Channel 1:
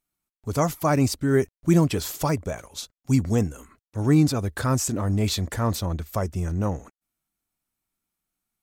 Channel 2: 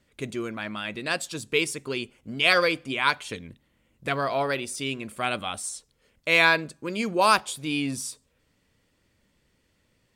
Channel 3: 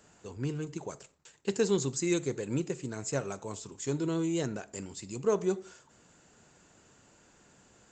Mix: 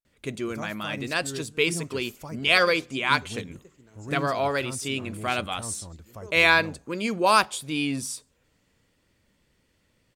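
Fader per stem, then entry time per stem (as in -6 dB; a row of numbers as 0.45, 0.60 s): -16.0, +0.5, -18.0 dB; 0.00, 0.05, 0.95 s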